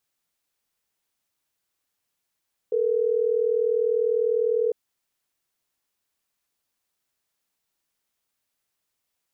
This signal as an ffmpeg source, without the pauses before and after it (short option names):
-f lavfi -i "aevalsrc='0.075*(sin(2*PI*440*t)+sin(2*PI*480*t))*clip(min(mod(t,6),2-mod(t,6))/0.005,0,1)':d=3.12:s=44100"